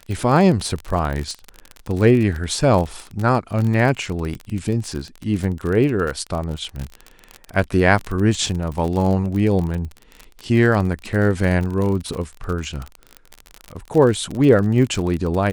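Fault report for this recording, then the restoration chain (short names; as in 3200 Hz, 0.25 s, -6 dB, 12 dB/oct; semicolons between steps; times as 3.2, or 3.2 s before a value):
crackle 37/s -23 dBFS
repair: de-click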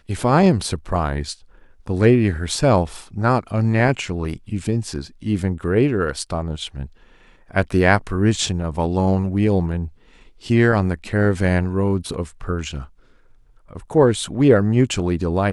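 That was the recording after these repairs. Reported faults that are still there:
none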